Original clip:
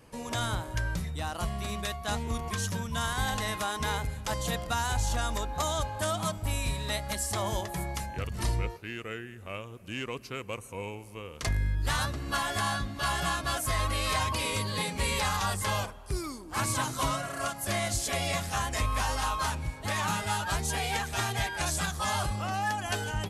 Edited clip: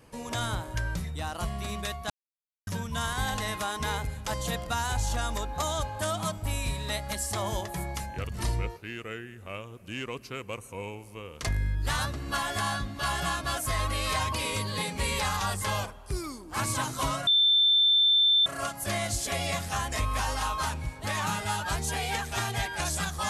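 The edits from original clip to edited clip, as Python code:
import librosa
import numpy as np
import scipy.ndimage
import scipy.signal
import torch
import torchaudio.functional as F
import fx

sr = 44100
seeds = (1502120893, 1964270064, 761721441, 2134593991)

y = fx.edit(x, sr, fx.silence(start_s=2.1, length_s=0.57),
    fx.insert_tone(at_s=17.27, length_s=1.19, hz=3550.0, db=-18.5), tone=tone)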